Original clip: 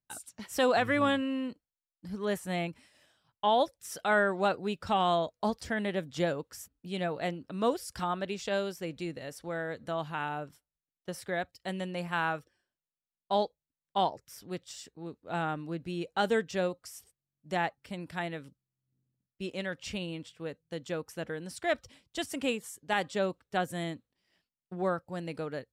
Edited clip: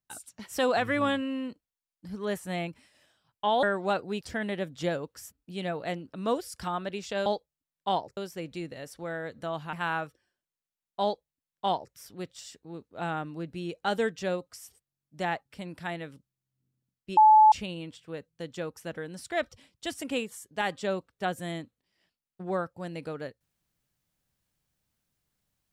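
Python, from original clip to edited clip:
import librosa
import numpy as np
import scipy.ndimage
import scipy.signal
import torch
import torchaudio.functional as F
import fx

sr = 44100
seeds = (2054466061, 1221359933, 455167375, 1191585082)

y = fx.edit(x, sr, fx.cut(start_s=3.63, length_s=0.55),
    fx.cut(start_s=4.76, length_s=0.81),
    fx.cut(start_s=10.18, length_s=1.87),
    fx.duplicate(start_s=13.35, length_s=0.91, to_s=8.62),
    fx.bleep(start_s=19.49, length_s=0.35, hz=863.0, db=-13.0), tone=tone)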